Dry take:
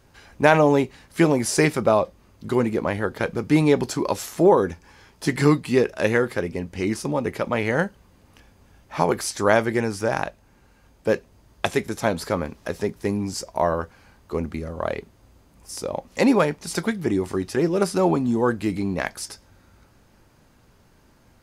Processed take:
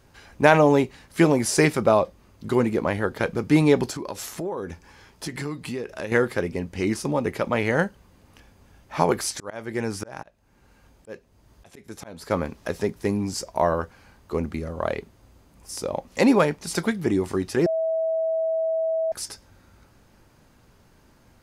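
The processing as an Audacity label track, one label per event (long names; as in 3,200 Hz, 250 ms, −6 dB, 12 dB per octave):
3.900000	6.120000	downward compressor 4 to 1, threshold −29 dBFS
9.280000	12.310000	volume swells 496 ms
17.660000	19.120000	beep over 648 Hz −21 dBFS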